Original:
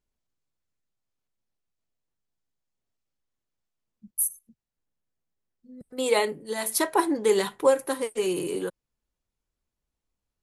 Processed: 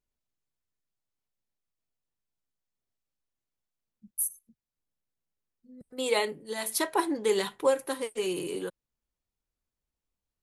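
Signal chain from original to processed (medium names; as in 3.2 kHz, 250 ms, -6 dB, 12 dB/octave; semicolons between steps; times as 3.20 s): dynamic bell 3.3 kHz, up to +4 dB, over -46 dBFS, Q 1; trim -4.5 dB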